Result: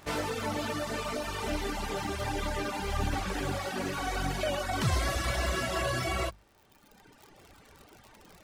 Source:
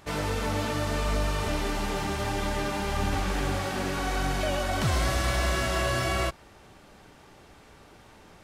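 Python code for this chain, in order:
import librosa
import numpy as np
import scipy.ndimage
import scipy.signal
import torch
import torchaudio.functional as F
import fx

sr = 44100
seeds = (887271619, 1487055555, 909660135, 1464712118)

y = fx.dmg_crackle(x, sr, seeds[0], per_s=100.0, level_db=-38.0)
y = fx.dereverb_blind(y, sr, rt60_s=1.6)
y = fx.hum_notches(y, sr, base_hz=50, count=4)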